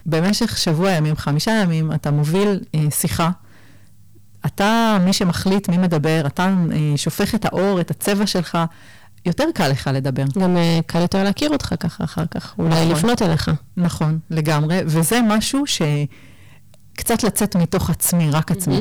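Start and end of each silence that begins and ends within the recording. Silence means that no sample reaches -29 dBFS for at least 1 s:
3.33–4.44

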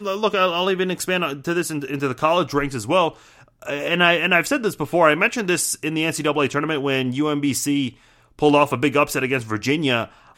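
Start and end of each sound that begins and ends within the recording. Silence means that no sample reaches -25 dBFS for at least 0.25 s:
3.67–7.89
8.39–10.04

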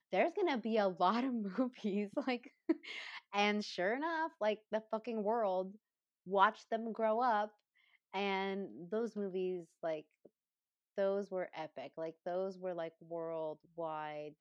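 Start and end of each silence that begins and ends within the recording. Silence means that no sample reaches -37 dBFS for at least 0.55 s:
5.62–6.32
7.45–8.14
9.99–10.98

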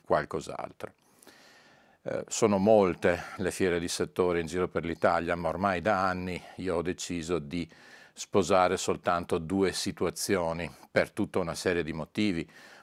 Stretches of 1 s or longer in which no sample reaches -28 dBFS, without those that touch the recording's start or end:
0.85–2.07

